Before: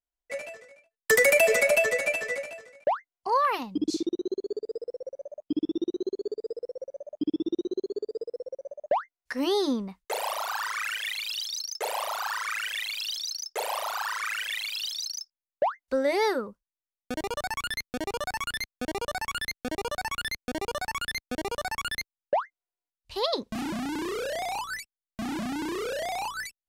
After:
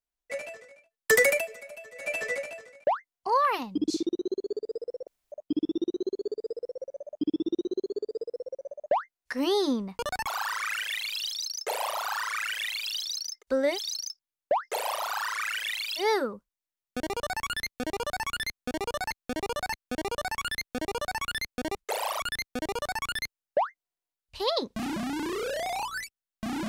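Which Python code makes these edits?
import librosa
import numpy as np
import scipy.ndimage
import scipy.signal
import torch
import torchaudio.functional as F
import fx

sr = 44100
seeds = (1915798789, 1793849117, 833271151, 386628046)

y = fx.edit(x, sr, fx.fade_down_up(start_s=1.21, length_s=1.01, db=-22.0, fade_s=0.27),
    fx.room_tone_fill(start_s=5.07, length_s=0.25),
    fx.swap(start_s=9.98, length_s=0.43, other_s=20.67, other_length_s=0.29),
    fx.swap(start_s=13.52, length_s=1.33, other_s=15.79, other_length_s=0.36, crossfade_s=0.1),
    fx.repeat(start_s=18.63, length_s=0.62, count=3), tone=tone)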